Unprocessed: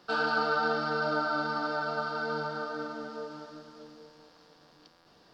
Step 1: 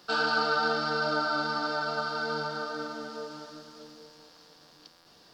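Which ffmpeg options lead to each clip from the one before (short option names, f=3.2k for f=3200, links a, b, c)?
-af "highshelf=f=3.7k:g=11.5"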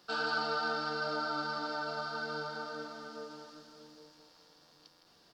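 -af "aecho=1:1:161:0.376,volume=-7dB"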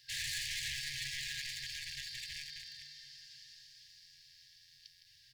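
-af "bandreject=f=74.36:t=h:w=4,bandreject=f=148.72:t=h:w=4,bandreject=f=223.08:t=h:w=4,bandreject=f=297.44:t=h:w=4,bandreject=f=371.8:t=h:w=4,aeval=exprs='0.0188*(abs(mod(val(0)/0.0188+3,4)-2)-1)':c=same,afftfilt=real='re*(1-between(b*sr/4096,150,1600))':imag='im*(1-between(b*sr/4096,150,1600))':win_size=4096:overlap=0.75,volume=3dB"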